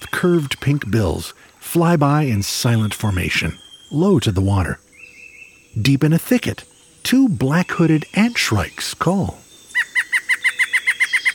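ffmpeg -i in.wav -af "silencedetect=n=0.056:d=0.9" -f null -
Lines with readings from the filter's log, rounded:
silence_start: 4.74
silence_end: 5.76 | silence_duration: 1.02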